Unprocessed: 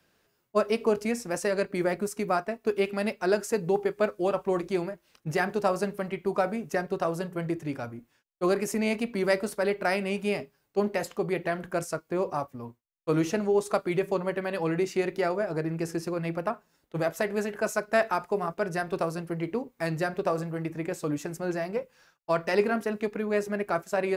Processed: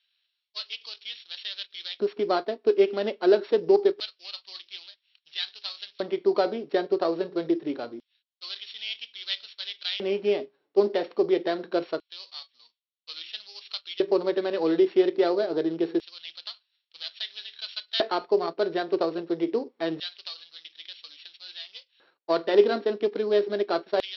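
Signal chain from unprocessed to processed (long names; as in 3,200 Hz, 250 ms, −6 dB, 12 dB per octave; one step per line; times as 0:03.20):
samples sorted by size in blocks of 8 samples
Chebyshev low-pass filter 4,400 Hz, order 5
auto-filter high-pass square 0.25 Hz 350–3,300 Hz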